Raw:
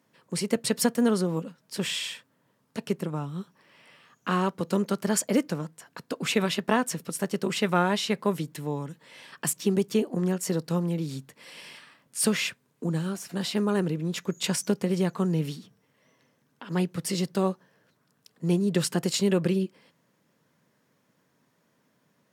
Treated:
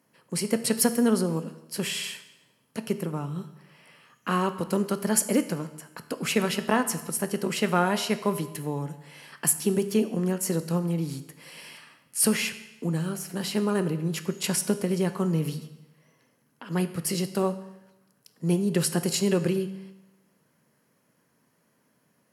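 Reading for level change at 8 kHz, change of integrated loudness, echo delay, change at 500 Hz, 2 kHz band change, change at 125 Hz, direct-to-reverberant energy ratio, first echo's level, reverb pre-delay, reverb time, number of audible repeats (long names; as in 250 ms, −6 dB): +3.5 dB, +1.0 dB, no echo audible, +0.5 dB, +0.5 dB, +0.5 dB, 10.5 dB, no echo audible, 13 ms, 0.95 s, no echo audible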